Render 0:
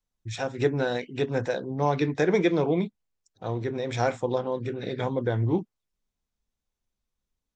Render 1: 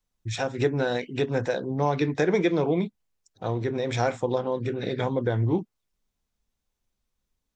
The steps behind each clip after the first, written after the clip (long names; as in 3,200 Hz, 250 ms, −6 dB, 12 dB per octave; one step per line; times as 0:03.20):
downward compressor 1.5 to 1, threshold −30 dBFS, peak gain reduction 5 dB
level +4 dB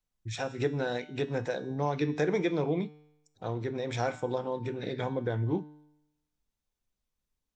tuned comb filter 150 Hz, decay 0.88 s, harmonics all, mix 60%
level +1.5 dB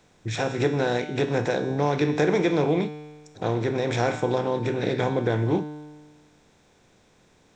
compressor on every frequency bin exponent 0.6
level +4 dB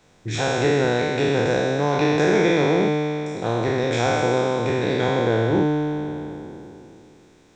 peak hold with a decay on every bin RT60 2.92 s